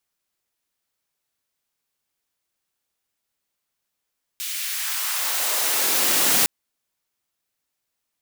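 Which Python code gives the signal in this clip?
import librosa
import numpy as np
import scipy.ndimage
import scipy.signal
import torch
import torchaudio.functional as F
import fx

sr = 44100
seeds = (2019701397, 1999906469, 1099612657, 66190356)

y = fx.riser_noise(sr, seeds[0], length_s=2.06, colour='white', kind='highpass', start_hz=2800.0, end_hz=150.0, q=1.2, swell_db=12, law='exponential')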